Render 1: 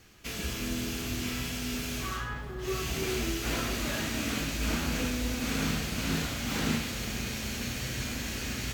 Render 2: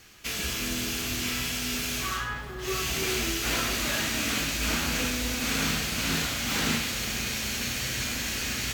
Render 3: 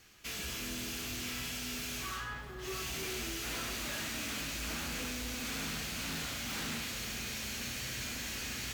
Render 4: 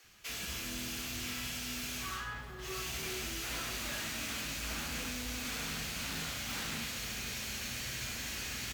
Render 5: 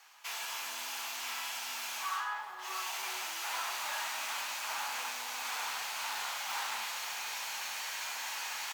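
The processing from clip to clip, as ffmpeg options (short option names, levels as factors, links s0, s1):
-af "tiltshelf=f=810:g=-4,volume=1.41"
-af "asoftclip=type=hard:threshold=0.0398,volume=0.422"
-filter_complex "[0:a]acrossover=split=340[s0][s1];[s0]adelay=40[s2];[s2][s1]amix=inputs=2:normalize=0"
-af "highpass=f=890:t=q:w=5.1"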